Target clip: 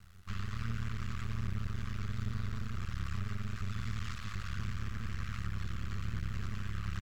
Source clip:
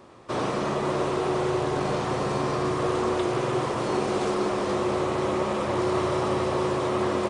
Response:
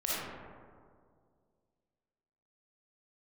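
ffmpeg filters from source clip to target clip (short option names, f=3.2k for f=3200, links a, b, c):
-af "afftfilt=real='re*(1-between(b*sr/4096,140,1400))':imag='im*(1-between(b*sr/4096,140,1400))':win_size=4096:overlap=0.75,tiltshelf=f=970:g=7.5,alimiter=level_in=3.5dB:limit=-24dB:level=0:latency=1:release=82,volume=-3.5dB,aeval=exprs='max(val(0),0)':c=same,atempo=1.3,acrusher=bits=8:dc=4:mix=0:aa=0.000001,aphaser=in_gain=1:out_gain=1:delay=3.2:decay=0.2:speed=1.6:type=triangular,asetrate=35280,aresample=44100,volume=1.5dB"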